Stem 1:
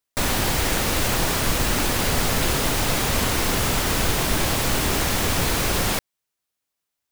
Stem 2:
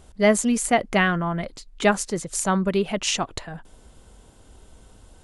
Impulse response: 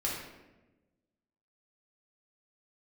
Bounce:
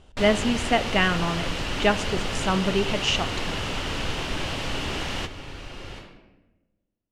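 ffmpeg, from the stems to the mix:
-filter_complex "[0:a]volume=-8.5dB,asplit=2[link_01][link_02];[link_02]volume=-15dB[link_03];[1:a]volume=-3.5dB,asplit=3[link_04][link_05][link_06];[link_05]volume=-17dB[link_07];[link_06]apad=whole_len=313632[link_08];[link_01][link_08]sidechaingate=range=-33dB:threshold=-57dB:ratio=16:detection=peak[link_09];[2:a]atrim=start_sample=2205[link_10];[link_03][link_07]amix=inputs=2:normalize=0[link_11];[link_11][link_10]afir=irnorm=-1:irlink=0[link_12];[link_09][link_04][link_12]amix=inputs=3:normalize=0,lowpass=5000,equalizer=frequency=2900:width=4.4:gain=8"

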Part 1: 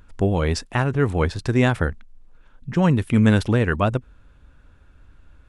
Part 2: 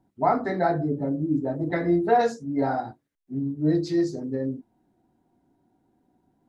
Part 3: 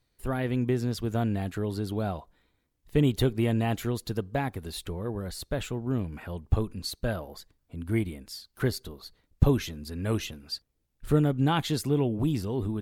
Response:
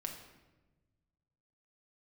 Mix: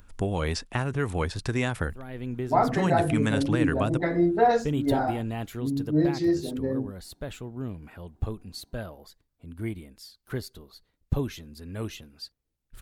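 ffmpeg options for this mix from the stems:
-filter_complex "[0:a]acrossover=split=640|5200[link_01][link_02][link_03];[link_01]acompressor=threshold=-22dB:ratio=4[link_04];[link_02]acompressor=threshold=-26dB:ratio=4[link_05];[link_03]acompressor=threshold=-48dB:ratio=4[link_06];[link_04][link_05][link_06]amix=inputs=3:normalize=0,highshelf=frequency=7000:gain=12,volume=-3.5dB,asplit=2[link_07][link_08];[1:a]adelay=2300,volume=-0.5dB[link_09];[2:a]adelay=1700,volume=-5.5dB[link_10];[link_08]apad=whole_len=640160[link_11];[link_10][link_11]sidechaincompress=threshold=-34dB:ratio=8:attack=23:release=478[link_12];[link_07][link_09][link_12]amix=inputs=3:normalize=0"

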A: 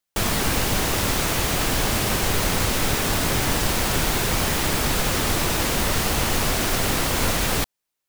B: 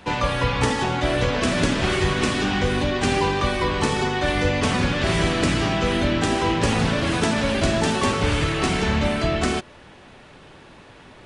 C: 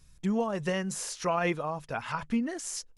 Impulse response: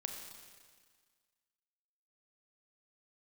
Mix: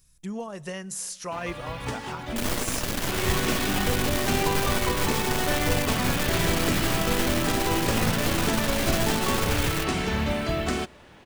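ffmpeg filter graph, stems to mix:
-filter_complex "[0:a]aeval=exprs='max(val(0),0)':channel_layout=same,adelay=2200,volume=-3dB[link_01];[1:a]acrusher=bits=6:mode=log:mix=0:aa=0.000001,adelay=1250,volume=-5.5dB,asplit=2[link_02][link_03];[link_03]volume=-20.5dB[link_04];[2:a]aemphasis=mode=production:type=50kf,volume=-6.5dB,asplit=3[link_05][link_06][link_07];[link_06]volume=-16dB[link_08];[link_07]apad=whole_len=551478[link_09];[link_02][link_09]sidechaincompress=threshold=-45dB:ratio=5:attack=16:release=520[link_10];[3:a]atrim=start_sample=2205[link_11];[link_04][link_08]amix=inputs=2:normalize=0[link_12];[link_12][link_11]afir=irnorm=-1:irlink=0[link_13];[link_01][link_10][link_05][link_13]amix=inputs=4:normalize=0"

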